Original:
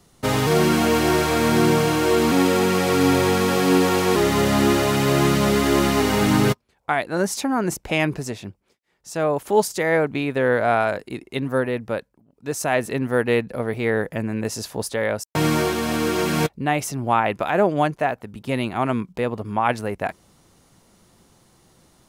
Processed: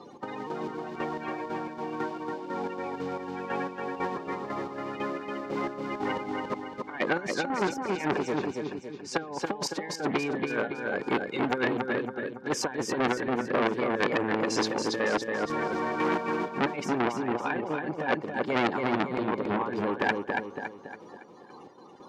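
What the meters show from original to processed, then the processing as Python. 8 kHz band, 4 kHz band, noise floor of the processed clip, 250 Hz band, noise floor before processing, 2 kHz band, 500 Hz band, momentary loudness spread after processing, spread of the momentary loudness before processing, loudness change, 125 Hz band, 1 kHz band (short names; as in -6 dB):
-13.0 dB, -10.5 dB, -48 dBFS, -9.5 dB, -64 dBFS, -6.5 dB, -9.5 dB, 8 LU, 10 LU, -9.5 dB, -16.0 dB, -7.5 dB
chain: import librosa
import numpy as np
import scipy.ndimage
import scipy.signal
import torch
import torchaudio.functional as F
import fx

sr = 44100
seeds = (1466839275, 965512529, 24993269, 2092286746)

p1 = fx.spec_quant(x, sr, step_db=30)
p2 = scipy.signal.sosfilt(scipy.signal.butter(2, 250.0, 'highpass', fs=sr, output='sos'), p1)
p3 = fx.over_compress(p2, sr, threshold_db=-28.0, ratio=-0.5)
p4 = fx.notch_comb(p3, sr, f0_hz=660.0)
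p5 = fx.chopper(p4, sr, hz=2.0, depth_pct=65, duty_pct=35)
p6 = fx.air_absorb(p5, sr, metres=190.0)
p7 = p6 + fx.echo_feedback(p6, sr, ms=280, feedback_pct=43, wet_db=-4.5, dry=0)
p8 = fx.transformer_sat(p7, sr, knee_hz=2200.0)
y = p8 * 10.0 ** (6.5 / 20.0)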